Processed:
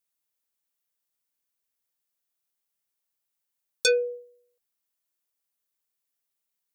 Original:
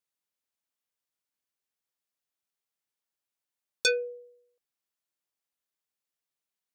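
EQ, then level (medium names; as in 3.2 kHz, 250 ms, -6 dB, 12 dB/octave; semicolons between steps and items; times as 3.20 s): treble shelf 8.5 kHz +10 dB; dynamic bell 490 Hz, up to +6 dB, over -42 dBFS; 0.0 dB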